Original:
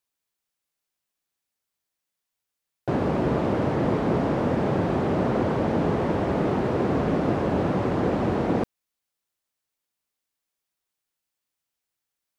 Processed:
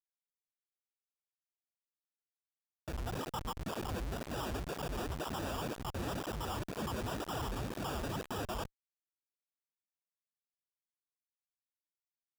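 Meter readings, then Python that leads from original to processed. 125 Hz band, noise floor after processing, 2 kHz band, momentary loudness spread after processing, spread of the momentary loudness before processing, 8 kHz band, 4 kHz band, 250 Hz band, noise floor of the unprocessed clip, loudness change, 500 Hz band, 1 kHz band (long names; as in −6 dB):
−15.0 dB, below −85 dBFS, −10.5 dB, 2 LU, 1 LU, can't be measured, −1.5 dB, −18.5 dB, −85 dBFS, −15.0 dB, −17.5 dB, −12.0 dB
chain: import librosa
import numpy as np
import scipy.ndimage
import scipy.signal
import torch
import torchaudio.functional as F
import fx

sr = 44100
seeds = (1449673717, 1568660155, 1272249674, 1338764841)

y = fx.spec_dropout(x, sr, seeds[0], share_pct=73)
y = scipy.signal.sosfilt(scipy.signal.cheby2(4, 50, [110.0, 620.0], 'bandstop', fs=sr, output='sos'), y)
y = fx.sample_hold(y, sr, seeds[1], rate_hz=2100.0, jitter_pct=0)
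y = fx.schmitt(y, sr, flips_db=-57.0)
y = fx.flanger_cancel(y, sr, hz=2.0, depth_ms=7.5)
y = y * librosa.db_to_amplitude(15.5)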